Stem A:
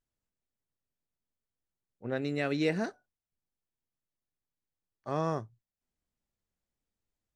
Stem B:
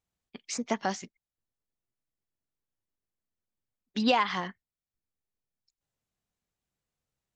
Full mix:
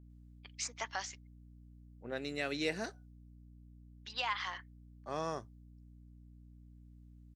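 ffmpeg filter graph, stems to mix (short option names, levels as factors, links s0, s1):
-filter_complex "[0:a]highpass=f=350:p=1,acontrast=61,adynamicequalizer=threshold=0.00708:dfrequency=2400:dqfactor=0.7:tfrequency=2400:tqfactor=0.7:attack=5:release=100:ratio=0.375:range=3.5:mode=boostabove:tftype=highshelf,volume=0.282,asplit=2[s0][s1];[1:a]highpass=1100,adelay=100,volume=0.708[s2];[s1]apad=whole_len=328581[s3];[s2][s3]sidechaincompress=threshold=0.00158:ratio=8:attack=16:release=1040[s4];[s0][s4]amix=inputs=2:normalize=0,aeval=exprs='val(0)+0.00178*(sin(2*PI*60*n/s)+sin(2*PI*2*60*n/s)/2+sin(2*PI*3*60*n/s)/3+sin(2*PI*4*60*n/s)/4+sin(2*PI*5*60*n/s)/5)':c=same"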